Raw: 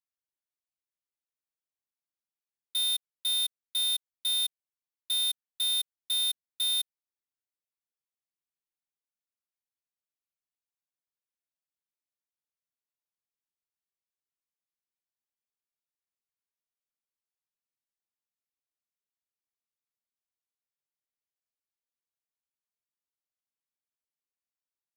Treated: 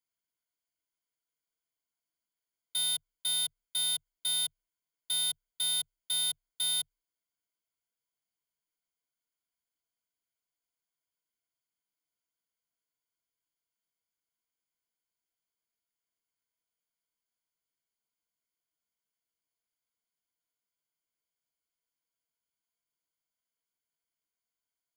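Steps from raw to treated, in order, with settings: ripple EQ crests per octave 1.8, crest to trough 13 dB

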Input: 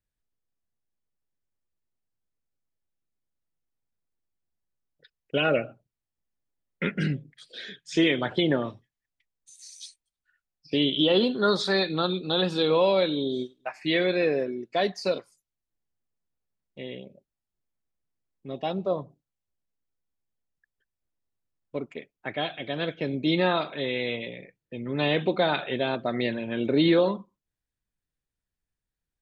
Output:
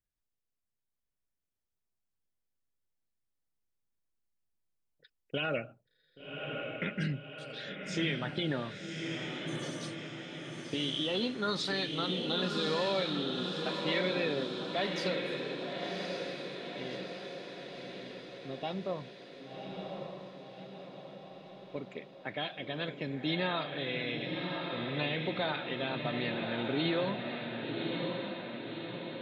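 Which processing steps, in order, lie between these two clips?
dynamic EQ 420 Hz, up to -6 dB, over -34 dBFS, Q 0.75; limiter -18 dBFS, peak gain reduction 5.5 dB; diffused feedback echo 1.122 s, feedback 59%, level -3.5 dB; gain -5 dB

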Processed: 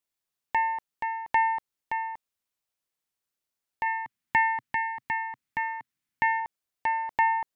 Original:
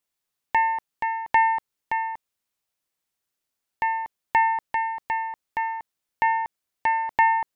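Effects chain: 3.86–6.4 graphic EQ 125/250/500/2000 Hz +9/+8/-7/+6 dB; gain -4.5 dB

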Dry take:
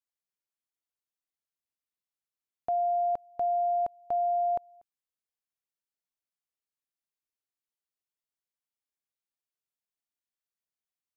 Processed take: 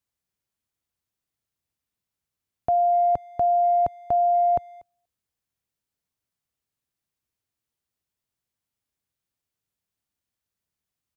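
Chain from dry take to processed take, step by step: bell 86 Hz +14 dB 2.7 oct; speakerphone echo 0.24 s, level -29 dB; gain +6 dB

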